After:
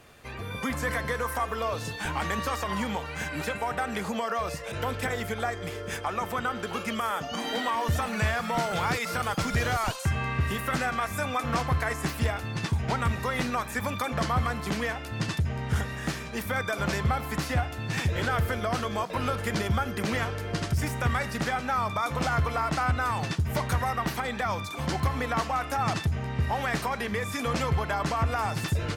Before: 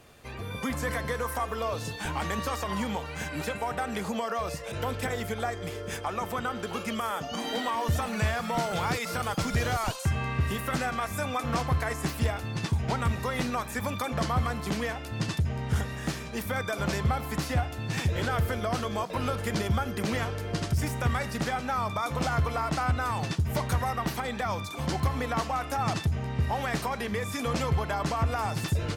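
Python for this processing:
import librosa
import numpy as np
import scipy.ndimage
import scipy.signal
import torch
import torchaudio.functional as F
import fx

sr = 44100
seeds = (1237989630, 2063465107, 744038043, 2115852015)

y = fx.peak_eq(x, sr, hz=1700.0, db=3.5, octaves=1.5)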